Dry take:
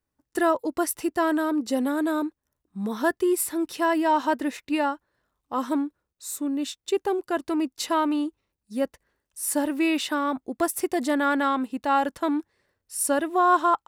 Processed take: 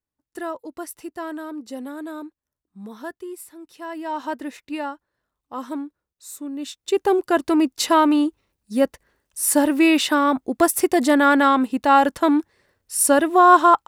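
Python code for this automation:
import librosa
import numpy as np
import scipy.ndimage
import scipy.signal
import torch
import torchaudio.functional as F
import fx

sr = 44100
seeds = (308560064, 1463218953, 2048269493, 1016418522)

y = fx.gain(x, sr, db=fx.line((2.84, -8.0), (3.6, -15.0), (4.27, -4.0), (6.52, -4.0), (7.12, 7.5)))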